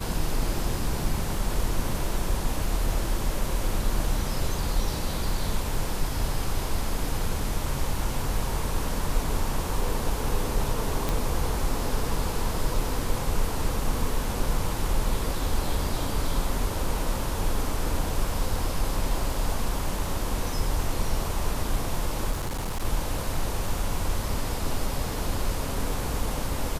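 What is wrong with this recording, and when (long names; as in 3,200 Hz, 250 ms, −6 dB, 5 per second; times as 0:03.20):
0:11.09: click
0:22.31–0:22.85: clipping −25.5 dBFS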